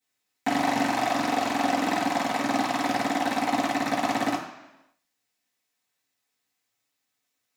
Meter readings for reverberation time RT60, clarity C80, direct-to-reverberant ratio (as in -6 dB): 1.0 s, 8.0 dB, -13.5 dB